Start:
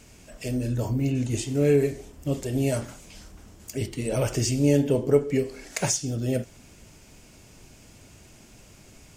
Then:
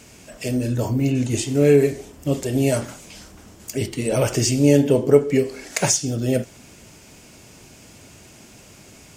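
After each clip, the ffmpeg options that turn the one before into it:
-af "highpass=f=120:p=1,volume=2.11"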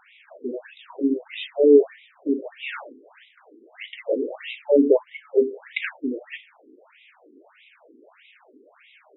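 -af "afftfilt=real='re*between(b*sr/1024,320*pow(2800/320,0.5+0.5*sin(2*PI*1.6*pts/sr))/1.41,320*pow(2800/320,0.5+0.5*sin(2*PI*1.6*pts/sr))*1.41)':imag='im*between(b*sr/1024,320*pow(2800/320,0.5+0.5*sin(2*PI*1.6*pts/sr))/1.41,320*pow(2800/320,0.5+0.5*sin(2*PI*1.6*pts/sr))*1.41)':win_size=1024:overlap=0.75,volume=1.33"

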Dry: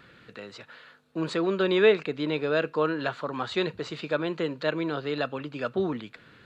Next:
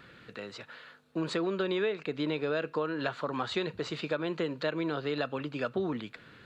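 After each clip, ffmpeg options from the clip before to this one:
-af "acompressor=threshold=0.0447:ratio=10"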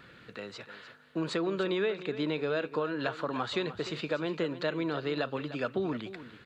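-af "aecho=1:1:300:0.211"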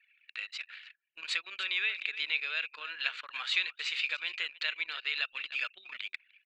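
-af "highpass=f=2400:t=q:w=3.2,anlmdn=0.0398,volume=1.26"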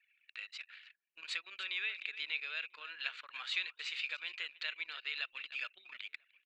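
-filter_complex "[0:a]asplit=2[s0][s1];[s1]adelay=991.3,volume=0.0355,highshelf=f=4000:g=-22.3[s2];[s0][s2]amix=inputs=2:normalize=0,volume=0.473"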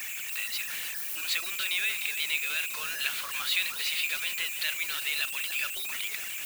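-af "aeval=exprs='val(0)+0.5*0.0106*sgn(val(0))':c=same,aemphasis=mode=production:type=50kf,volume=1.5"

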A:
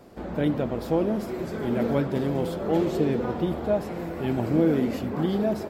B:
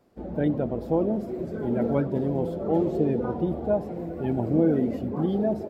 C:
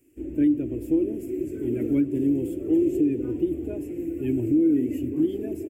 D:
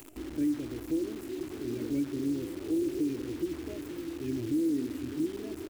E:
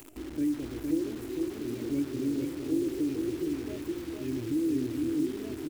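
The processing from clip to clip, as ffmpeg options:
-af "afftdn=nr=14:nf=-32"
-af "firequalizer=gain_entry='entry(120,0);entry(200,-18);entry(290,12);entry(480,-10);entry(770,-24);entry(1300,-17);entry(1800,-4);entry(2600,8);entry(3900,-13);entry(7500,13)':delay=0.05:min_phase=1,alimiter=limit=0.2:level=0:latency=1:release=216"
-af "acompressor=mode=upward:threshold=0.0501:ratio=2.5,acrusher=bits=7:dc=4:mix=0:aa=0.000001,volume=0.376"
-af "aecho=1:1:461:0.631"

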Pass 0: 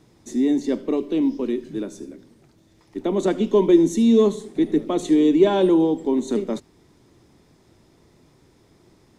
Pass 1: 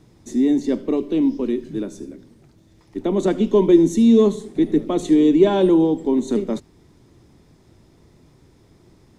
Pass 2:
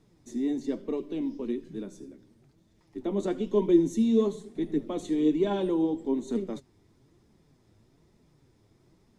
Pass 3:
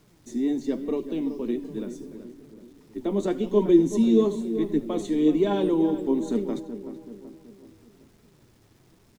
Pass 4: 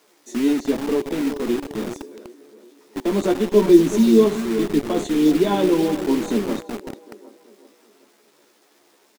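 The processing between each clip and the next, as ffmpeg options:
-af "lowshelf=f=190:g=7.5"
-af "flanger=delay=4.1:depth=6.1:regen=48:speed=1.1:shape=triangular,volume=0.473"
-filter_complex "[0:a]acrusher=bits=10:mix=0:aa=0.000001,asplit=2[s0][s1];[s1]adelay=379,lowpass=f=1600:p=1,volume=0.299,asplit=2[s2][s3];[s3]adelay=379,lowpass=f=1600:p=1,volume=0.5,asplit=2[s4][s5];[s5]adelay=379,lowpass=f=1600:p=1,volume=0.5,asplit=2[s6][s7];[s7]adelay=379,lowpass=f=1600:p=1,volume=0.5,asplit=2[s8][s9];[s9]adelay=379,lowpass=f=1600:p=1,volume=0.5[s10];[s2][s4][s6][s8][s10]amix=inputs=5:normalize=0[s11];[s0][s11]amix=inputs=2:normalize=0,volume=1.5"
-filter_complex "[0:a]acrossover=split=320[s0][s1];[s0]acrusher=bits=5:mix=0:aa=0.000001[s2];[s1]asplit=2[s3][s4];[s4]adelay=14,volume=0.708[s5];[s3][s5]amix=inputs=2:normalize=0[s6];[s2][s6]amix=inputs=2:normalize=0,volume=1.68"

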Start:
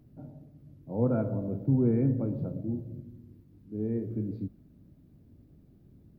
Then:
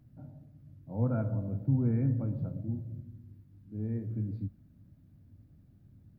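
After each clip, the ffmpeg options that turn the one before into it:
-af "equalizer=f=100:t=o:w=0.67:g=7,equalizer=f=400:t=o:w=0.67:g=-9,equalizer=f=1600:t=o:w=0.67:g=4,volume=0.668"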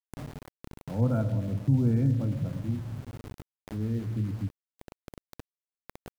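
-af "aeval=exprs='val(0)+0.00112*(sin(2*PI*50*n/s)+sin(2*PI*2*50*n/s)/2+sin(2*PI*3*50*n/s)/3+sin(2*PI*4*50*n/s)/4+sin(2*PI*5*50*n/s)/5)':c=same,aeval=exprs='val(0)*gte(abs(val(0)),0.00447)':c=same,acompressor=mode=upward:threshold=0.0158:ratio=2.5,volume=1.58"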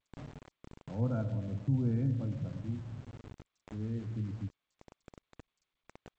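-af "volume=0.473" -ar 16000 -c:a g722

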